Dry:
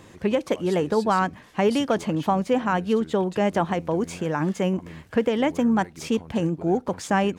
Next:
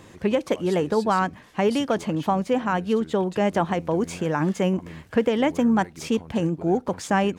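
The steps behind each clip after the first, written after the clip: gain riding 2 s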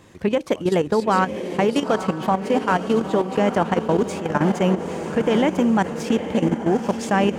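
echo that smears into a reverb 921 ms, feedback 55%, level -6.5 dB; level held to a coarse grid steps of 11 dB; trim +5 dB

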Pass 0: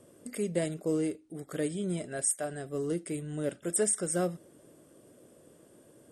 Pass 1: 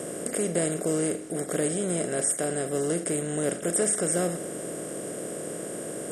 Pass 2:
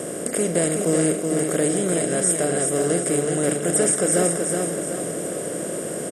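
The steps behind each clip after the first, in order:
spectral levelling over time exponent 0.4
feedback delay 375 ms, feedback 44%, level -4.5 dB; trim +5 dB

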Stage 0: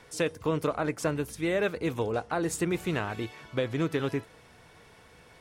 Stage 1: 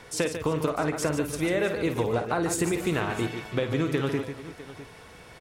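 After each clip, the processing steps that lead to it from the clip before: compression, threshold -29 dBFS, peak gain reduction 7 dB; on a send: multi-tap echo 52/146/342/653 ms -10/-8.5/-18/-16.5 dB; on the sum: trim +6 dB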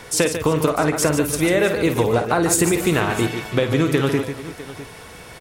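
treble shelf 8.2 kHz +8.5 dB; trim +8 dB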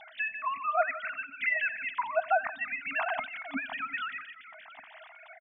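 formants replaced by sine waves; feedback delay 88 ms, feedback 59%, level -23 dB; FFT band-reject 280–620 Hz; trim -3.5 dB

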